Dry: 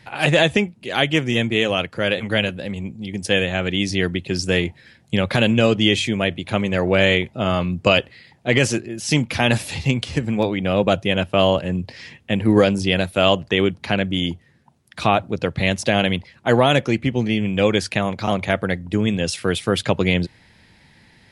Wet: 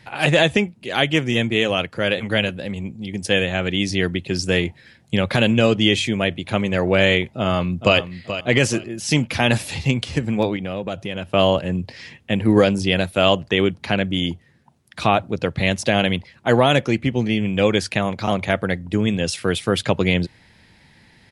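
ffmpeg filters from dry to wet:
ffmpeg -i in.wav -filter_complex "[0:a]asplit=2[link_01][link_02];[link_02]afade=type=in:start_time=7.38:duration=0.01,afade=type=out:start_time=7.97:duration=0.01,aecho=0:1:430|860|1290:0.281838|0.0704596|0.0176149[link_03];[link_01][link_03]amix=inputs=2:normalize=0,asettb=1/sr,asplit=3[link_04][link_05][link_06];[link_04]atrim=end=10.564[link_07];[link_05]atrim=start=10.56:end=11.29,asetpts=PTS-STARTPTS,afade=type=in:duration=0.004:curve=qsin,afade=type=out:start_time=0.726:duration=0.004:curve=qsin,acompressor=threshold=-25dB:ratio=3:attack=3.2:release=140:knee=1:detection=peak[link_08];[link_06]atrim=start=11.286[link_09];[link_07][link_08]acrossfade=duration=0.004:curve1=hsin:curve2=qsin[link_10];[link_10][link_09]acrossfade=duration=0.004:curve1=qsin:curve2=hsin" out.wav

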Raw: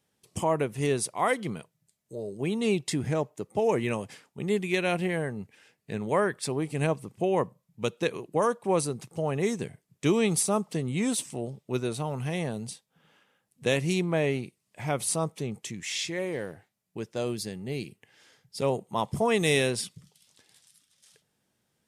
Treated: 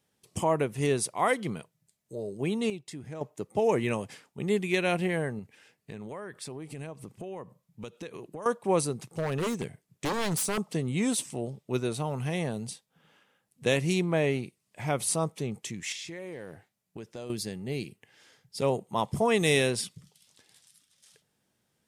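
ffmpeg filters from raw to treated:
ffmpeg -i in.wav -filter_complex "[0:a]asettb=1/sr,asplit=3[link_01][link_02][link_03];[link_01]atrim=end=5.394[link_04];[link_02]atrim=start=5.39:end=8.46,asetpts=PTS-STARTPTS,afade=type=in:duration=0.004:curve=qsin,afade=type=out:start_time=3.066:duration=0.004:curve=qsin,acompressor=threshold=-37dB:ratio=6:attack=3.2:release=140:knee=1:detection=peak[link_05];[link_03]atrim=start=8.456[link_06];[link_04][link_05]acrossfade=duration=0.004:curve1=hsin:curve2=qsin[link_07];[link_07][link_06]acrossfade=duration=0.004:curve1=qsin:curve2=hsin,asettb=1/sr,asplit=3[link_08][link_09][link_10];[link_08]atrim=end=9.064[link_11];[link_09]atrim=start=9.06:end=10.58,asetpts=PTS-STARTPTS,afade=type=in:duration=0.004:curve=qsin,afade=type=out:start_time=1.516:duration=0.004:curve=qsin,aeval=exprs='0.0631*(abs(mod(val(0)/0.0631+3,4)-2)-1)':channel_layout=same[link_12];[link_10]atrim=start=10.576[link_13];[link_11][link_12]acrossfade=duration=0.004:curve1=hsin:curve2=qsin[link_14];[link_14][link_13]acrossfade=duration=0.004:curve1=qsin:curve2=hsin,asettb=1/sr,asplit=3[link_15][link_16][link_17];[link_15]atrim=end=15.924[link_18];[link_16]atrim=start=15.92:end=17.3,asetpts=PTS-STARTPTS,afade=type=in:duration=0.004:curve=qsin,afade=type=out:start_time=1.376:duration=0.004:curve=qsin,acompressor=threshold=-37dB:ratio=5:attack=3.2:release=140:knee=1:detection=peak[link_19];[link_17]atrim=start=17.296[link_20];[link_18][link_19]acrossfade=duration=0.004:curve1=hsin:curve2=qsin[link_21];[link_21][link_20]acrossfade=duration=0.004:curve1=qsin:curve2=hsin,asplit=3[link_22][link_23][link_24];[link_22]atrim=end=2.7,asetpts=PTS-STARTPTS,afade=type=out:start_time=2.26:duration=0.44:curve=log:silence=0.237137[link_25];[link_23]atrim=start=2.7:end=3.21,asetpts=PTS-STARTPTS,volume=-12.5dB[link_26];[link_24]atrim=start=3.21,asetpts=PTS-STARTPTS,afade=type=in:duration=0.44:curve=log:silence=0.237137[link_27];[link_25][link_26][link_27]concat=n=3:v=0:a=1" out.wav

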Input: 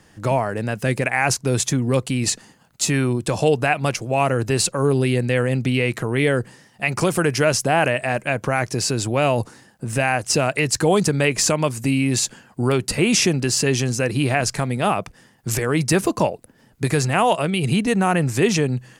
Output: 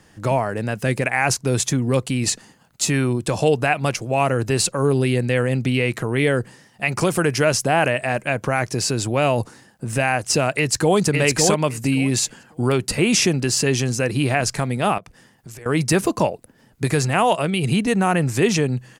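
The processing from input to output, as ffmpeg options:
ffmpeg -i in.wav -filter_complex "[0:a]asplit=2[link_01][link_02];[link_02]afade=type=in:start_time=10.57:duration=0.01,afade=type=out:start_time=10.98:duration=0.01,aecho=0:1:560|1120|1680:0.668344|0.100252|0.0150377[link_03];[link_01][link_03]amix=inputs=2:normalize=0,asettb=1/sr,asplit=3[link_04][link_05][link_06];[link_04]atrim=end=14.984[link_07];[link_05]atrim=start=14.98:end=15.66,asetpts=PTS-STARTPTS,afade=type=in:duration=0.004:curve=qsin,afade=type=out:start_time=0.676:duration=0.004:curve=qsin,acompressor=threshold=-37dB:ratio=5:attack=3.2:release=140:knee=1:detection=peak[link_08];[link_06]atrim=start=15.656[link_09];[link_07][link_08]acrossfade=duration=0.004:curve1=hsin:curve2=qsin[link_10];[link_10][link_09]acrossfade=duration=0.004:curve1=qsin:curve2=hsin" out.wav

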